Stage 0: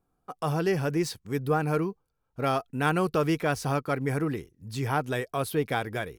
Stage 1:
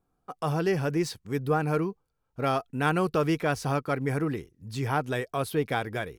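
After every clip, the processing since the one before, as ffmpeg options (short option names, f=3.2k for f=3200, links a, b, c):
-af "highshelf=f=10k:g=-5"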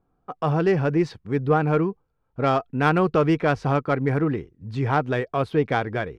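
-af "adynamicsmooth=sensitivity=1:basefreq=2.5k,volume=6dB"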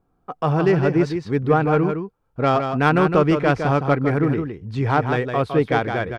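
-af "aecho=1:1:160:0.447,volume=2.5dB"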